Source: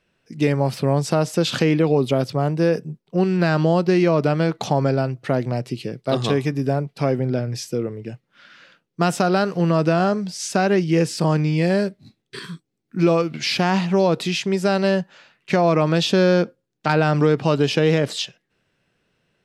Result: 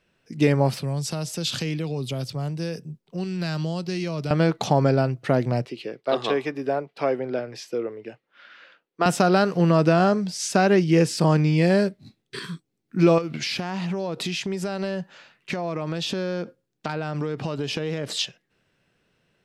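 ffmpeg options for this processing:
ffmpeg -i in.wav -filter_complex "[0:a]asettb=1/sr,asplit=3[link_01][link_02][link_03];[link_01]atrim=end=0.794[link_04];[link_02]atrim=start=0.79:end=4.31,asetpts=PTS-STARTPTS,afade=type=in:duration=0.004:curve=qsin,afade=type=out:start_time=3.516:duration=0.004:curve=qsin,acrossover=split=130|3000[link_05][link_06][link_07];[link_06]acompressor=threshold=-54dB:ratio=1.5:attack=3.2:release=140:knee=2.83:detection=peak[link_08];[link_05][link_08][link_07]amix=inputs=3:normalize=0[link_09];[link_03]atrim=start=4.306[link_10];[link_04][link_09]acrossfade=duration=0.004:curve1=hsin:curve2=qsin[link_11];[link_11][link_10]acrossfade=duration=0.004:curve1=qsin:curve2=hsin,asettb=1/sr,asplit=3[link_12][link_13][link_14];[link_12]atrim=end=5.654[link_15];[link_13]atrim=start=5.65:end=9.06,asetpts=PTS-STARTPTS,afade=type=in:duration=0.004:curve=qsin,afade=type=out:start_time=3.406:duration=0.004:curve=qsin,acrossover=split=310 4100:gain=0.1 1 0.224[link_16][link_17][link_18];[link_16][link_17][link_18]amix=inputs=3:normalize=0[link_19];[link_14]atrim=start=9.056[link_20];[link_15][link_19]acrossfade=duration=0.004:curve1=hsin:curve2=qsin[link_21];[link_21][link_20]acrossfade=duration=0.004:curve1=qsin:curve2=hsin,asettb=1/sr,asplit=3[link_22][link_23][link_24];[link_22]atrim=end=13.184[link_25];[link_23]atrim=start=13.18:end=18.19,asetpts=PTS-STARTPTS,afade=type=in:duration=0.004:curve=qsin,afade=type=out:start_time=5.006:duration=0.004:curve=qsin,acompressor=threshold=-24dB:ratio=6:attack=3.2:release=140:knee=1:detection=peak[link_26];[link_24]atrim=start=18.186[link_27];[link_25][link_26]acrossfade=duration=0.004:curve1=hsin:curve2=qsin[link_28];[link_28][link_27]acrossfade=duration=0.004:curve1=qsin:curve2=hsin" out.wav

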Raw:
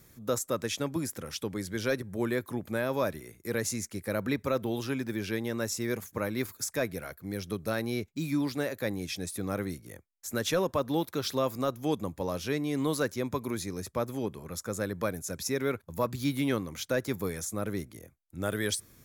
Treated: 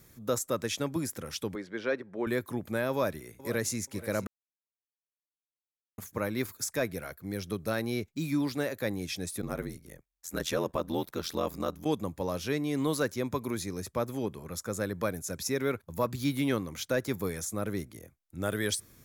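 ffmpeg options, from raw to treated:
ffmpeg -i in.wav -filter_complex "[0:a]asettb=1/sr,asplit=3[link_01][link_02][link_03];[link_01]atrim=end=1.554[link_04];[link_02]atrim=start=1.55:end=2.27,asetpts=PTS-STARTPTS,afade=type=in:duration=0.004:curve=qsin,afade=type=out:start_time=0.716:duration=0.004:curve=qsin,highpass=290,lowpass=2600[link_05];[link_03]atrim=start=2.266[link_06];[link_04][link_05]acrossfade=duration=0.004:curve1=hsin:curve2=qsin[link_07];[link_07][link_06]acrossfade=duration=0.004:curve1=qsin:curve2=hsin,asplit=2[link_08][link_09];[link_09]afade=type=in:start_time=2.91:duration=0.01,afade=type=out:start_time=3.76:duration=0.01,aecho=0:1:480|960|1440:0.188365|0.0470912|0.0117728[link_10];[link_08][link_10]amix=inputs=2:normalize=0,asplit=3[link_11][link_12][link_13];[link_11]afade=type=out:start_time=9.41:duration=0.02[link_14];[link_12]aeval=exprs='val(0)*sin(2*PI*42*n/s)':channel_layout=same,afade=type=in:start_time=9.41:duration=0.02,afade=type=out:start_time=11.84:duration=0.02[link_15];[link_13]afade=type=in:start_time=11.84:duration=0.02[link_16];[link_14][link_15][link_16]amix=inputs=3:normalize=0,asplit=3[link_17][link_18][link_19];[link_17]atrim=end=4.27,asetpts=PTS-STARTPTS,afade=type=out:start_time=4.266:duration=0.004:curve=hsin[link_20];[link_18]atrim=start=4.27:end=5.98,asetpts=PTS-STARTPTS,volume=0[link_21];[link_19]atrim=start=5.98,asetpts=PTS-STARTPTS,afade=type=in:duration=0.004:curve=hsin[link_22];[link_20][link_21][link_22]concat=n=3:v=0:a=1" out.wav

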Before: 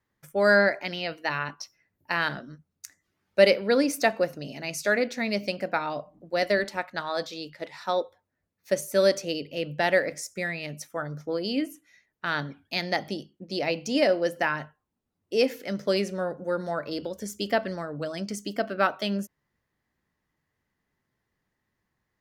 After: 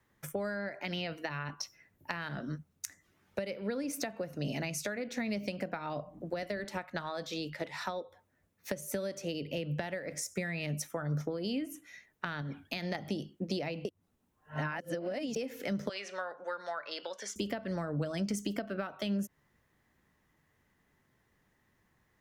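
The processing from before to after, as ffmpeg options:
ffmpeg -i in.wav -filter_complex "[0:a]asettb=1/sr,asplit=3[link_01][link_02][link_03];[link_01]atrim=end=12.414[link_04];[link_02]atrim=start=12.41:end=12.95,asetpts=PTS-STARTPTS,afade=type=in:duration=0.004:curve=qsin,afade=type=out:start_time=0.536:duration=0.004:curve=qsin,acompressor=threshold=-37dB:ratio=2:attack=3.2:release=140:knee=1:detection=peak[link_05];[link_03]atrim=start=12.946[link_06];[link_04][link_05]acrossfade=duration=0.004:curve1=hsin:curve2=qsin[link_07];[link_07][link_06]acrossfade=duration=0.004:curve1=qsin:curve2=hsin,asettb=1/sr,asplit=3[link_08][link_09][link_10];[link_08]atrim=end=15.894[link_11];[link_09]atrim=start=15.89:end=17.36,asetpts=PTS-STARTPTS,afade=type=in:duration=0.004:curve=qsin,afade=type=out:start_time=1.466:duration=0.004:curve=qsin,asuperpass=centerf=2200:order=4:qfactor=0.51[link_12];[link_10]atrim=start=17.356[link_13];[link_11][link_12]acrossfade=duration=0.004:curve1=hsin:curve2=qsin[link_14];[link_14][link_13]acrossfade=duration=0.004:curve1=qsin:curve2=hsin,asplit=3[link_15][link_16][link_17];[link_15]atrim=end=13.852[link_18];[link_16]atrim=start=13.848:end=15.362,asetpts=PTS-STARTPTS,areverse[link_19];[link_17]atrim=start=15.358[link_20];[link_18][link_19]acrossfade=duration=0.004:curve1=hsin:curve2=hsin[link_21];[link_21][link_20]acrossfade=duration=0.004:curve1=hsin:curve2=hsin,acompressor=threshold=-31dB:ratio=6,equalizer=frequency=4600:width_type=o:width=0.33:gain=-4.5,acrossover=split=180[link_22][link_23];[link_23]acompressor=threshold=-42dB:ratio=6[link_24];[link_22][link_24]amix=inputs=2:normalize=0,volume=7dB" out.wav

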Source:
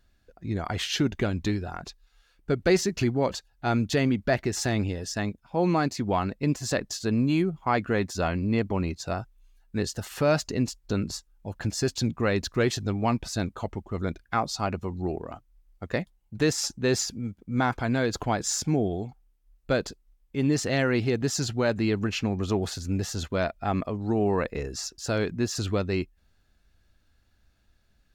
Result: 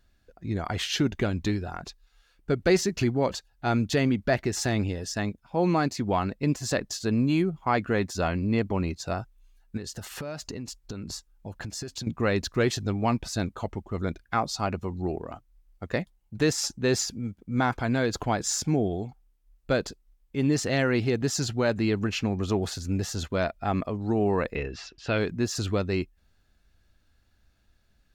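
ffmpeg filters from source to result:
ffmpeg -i in.wav -filter_complex "[0:a]asettb=1/sr,asplit=3[link_01][link_02][link_03];[link_01]atrim=end=9.774[link_04];[link_02]atrim=start=9.77:end=12.07,asetpts=PTS-STARTPTS,afade=type=in:duration=0.004:curve=qsin,afade=type=out:start_time=2.296:duration=0.004:curve=qsin,acompressor=threshold=-31dB:ratio=16:attack=3.2:release=140:knee=1:detection=peak[link_05];[link_03]atrim=start=12.066[link_06];[link_04][link_05]acrossfade=duration=0.004:curve1=hsin:curve2=qsin[link_07];[link_07][link_06]acrossfade=duration=0.004:curve1=qsin:curve2=hsin,asettb=1/sr,asplit=3[link_08][link_09][link_10];[link_08]atrim=end=24.554[link_11];[link_09]atrim=start=24.55:end=25.18,asetpts=PTS-STARTPTS,afade=type=in:duration=0.004:curve=qsin,afade=type=out:start_time=0.626:duration=0.004:curve=qsin,lowpass=frequency=2800:width_type=q:width=2.6[link_12];[link_10]atrim=start=25.176[link_13];[link_11][link_12]acrossfade=duration=0.004:curve1=hsin:curve2=qsin[link_14];[link_14][link_13]acrossfade=duration=0.004:curve1=qsin:curve2=hsin" out.wav

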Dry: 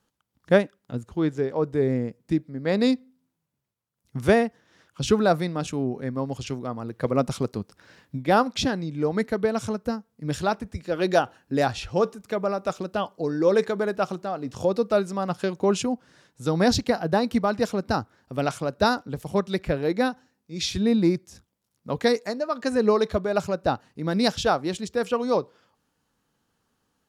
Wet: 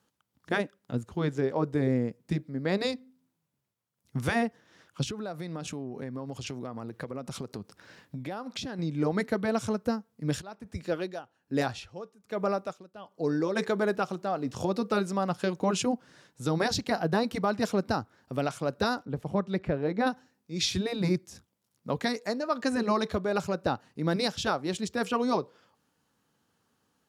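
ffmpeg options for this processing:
ffmpeg -i in.wav -filter_complex "[0:a]asettb=1/sr,asplit=3[link_01][link_02][link_03];[link_01]atrim=end=5.034[link_04];[link_02]atrim=start=5.03:end=8.79,asetpts=PTS-STARTPTS,afade=type=in:duration=0.004:curve=qsin,afade=type=out:start_time=3.756:duration=0.004:curve=qsin,acompressor=threshold=-32dB:ratio=16:attack=3.2:release=140:knee=1:detection=peak[link_05];[link_03]atrim=start=8.786[link_06];[link_04][link_05]acrossfade=duration=0.004:curve1=hsin:curve2=qsin[link_07];[link_07][link_06]acrossfade=duration=0.004:curve1=qsin:curve2=hsin,asplit=3[link_08][link_09][link_10];[link_08]afade=type=out:start_time=10.4:duration=0.02[link_11];[link_09]aeval=exprs='val(0)*pow(10,-21*(0.5-0.5*cos(2*PI*1.2*n/s))/20)':channel_layout=same,afade=type=in:start_time=10.4:duration=0.02,afade=type=out:start_time=13.55:duration=0.02[link_12];[link_10]afade=type=in:start_time=13.55:duration=0.02[link_13];[link_11][link_12][link_13]amix=inputs=3:normalize=0,asettb=1/sr,asplit=3[link_14][link_15][link_16];[link_14]atrim=end=19.054[link_17];[link_15]atrim=start=19.05:end=20.07,asetpts=PTS-STARTPTS,afade=type=in:duration=0.004:curve=qsin,afade=type=out:start_time=1.016:duration=0.004:curve=qsin,lowpass=frequency=1400:poles=1[link_18];[link_16]atrim=start=20.066[link_19];[link_17][link_18]acrossfade=duration=0.004:curve1=hsin:curve2=qsin[link_20];[link_20][link_19]acrossfade=duration=0.004:curve1=qsin:curve2=hsin,afftfilt=real='re*lt(hypot(re,im),0.794)':imag='im*lt(hypot(re,im),0.794)':win_size=1024:overlap=0.75,highpass=81,alimiter=limit=-16dB:level=0:latency=1:release=329" out.wav

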